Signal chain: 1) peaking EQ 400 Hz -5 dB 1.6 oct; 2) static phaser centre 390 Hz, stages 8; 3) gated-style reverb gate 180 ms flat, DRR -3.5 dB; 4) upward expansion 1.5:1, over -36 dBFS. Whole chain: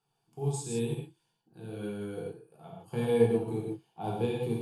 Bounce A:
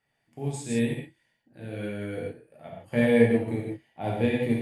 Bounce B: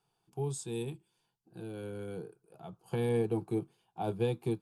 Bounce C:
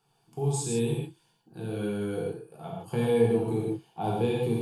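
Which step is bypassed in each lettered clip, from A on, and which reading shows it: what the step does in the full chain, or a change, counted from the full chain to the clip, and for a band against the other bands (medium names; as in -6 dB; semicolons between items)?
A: 2, 2 kHz band +10.5 dB; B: 3, crest factor change -5.0 dB; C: 4, crest factor change -3.5 dB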